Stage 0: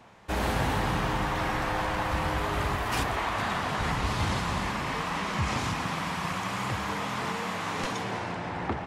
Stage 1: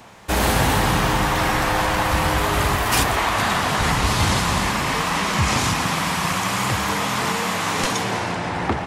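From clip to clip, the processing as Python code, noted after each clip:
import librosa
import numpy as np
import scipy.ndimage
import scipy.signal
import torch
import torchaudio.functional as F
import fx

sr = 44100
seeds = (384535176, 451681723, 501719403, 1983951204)

y = fx.high_shelf(x, sr, hz=5400.0, db=11.0)
y = y * 10.0 ** (8.5 / 20.0)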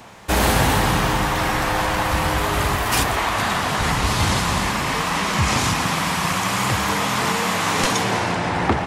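y = fx.rider(x, sr, range_db=10, speed_s=2.0)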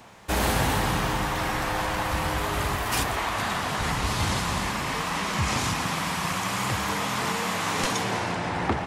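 y = fx.quant_dither(x, sr, seeds[0], bits=12, dither='none')
y = y * 10.0 ** (-6.5 / 20.0)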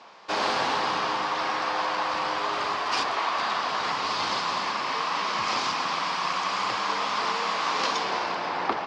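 y = fx.cabinet(x, sr, low_hz=390.0, low_slope=12, high_hz=5400.0, hz=(1100.0, 1900.0, 4800.0), db=(5, -3, 6))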